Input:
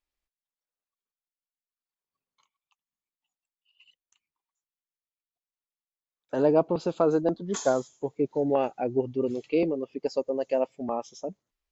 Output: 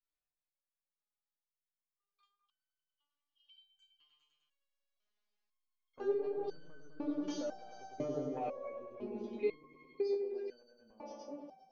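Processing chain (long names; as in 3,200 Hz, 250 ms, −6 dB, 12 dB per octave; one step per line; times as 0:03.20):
source passing by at 0:04.98, 29 m/s, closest 23 metres
parametric band 110 Hz −12.5 dB 0.31 octaves
in parallel at −3 dB: soft clipping −28 dBFS, distortion −9 dB
on the sum: Butterworth low-pass 5,700 Hz
on a send: echo whose low-pass opens from repeat to repeat 102 ms, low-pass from 750 Hz, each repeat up 1 octave, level −3 dB
on the sum: downward compressor 6 to 1, threshold −34 dBFS, peak gain reduction 15.5 dB
step-sequenced resonator 2 Hz 150–1,500 Hz
level +14.5 dB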